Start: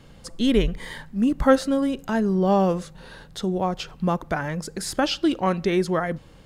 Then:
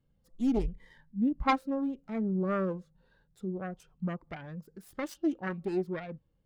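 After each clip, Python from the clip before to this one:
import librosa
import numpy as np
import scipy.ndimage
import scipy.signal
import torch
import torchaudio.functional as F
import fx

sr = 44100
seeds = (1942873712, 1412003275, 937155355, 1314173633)

y = fx.self_delay(x, sr, depth_ms=0.73)
y = fx.spectral_expand(y, sr, expansion=1.5)
y = y * librosa.db_to_amplitude(-8.5)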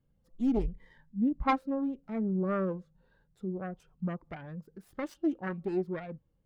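y = fx.high_shelf(x, sr, hz=3300.0, db=-9.5)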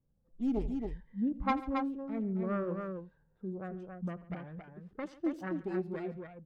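y = fx.echo_multitap(x, sr, ms=(84, 141, 274), db=(-18.5, -19.5, -5.0))
y = fx.env_lowpass(y, sr, base_hz=1100.0, full_db=-28.5)
y = y * librosa.db_to_amplitude(-4.0)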